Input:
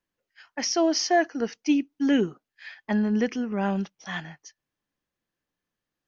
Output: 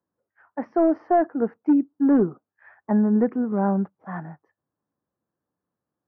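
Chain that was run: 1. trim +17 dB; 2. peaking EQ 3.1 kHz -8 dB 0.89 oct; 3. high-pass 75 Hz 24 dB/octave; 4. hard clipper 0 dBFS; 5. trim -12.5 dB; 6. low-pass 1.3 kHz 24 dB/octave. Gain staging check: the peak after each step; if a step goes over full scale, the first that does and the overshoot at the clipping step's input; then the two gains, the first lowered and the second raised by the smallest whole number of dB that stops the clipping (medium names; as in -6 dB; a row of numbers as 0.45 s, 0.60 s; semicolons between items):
+6.5 dBFS, +6.0 dBFS, +6.0 dBFS, 0.0 dBFS, -12.5 dBFS, -11.5 dBFS; step 1, 6.0 dB; step 1 +11 dB, step 5 -6.5 dB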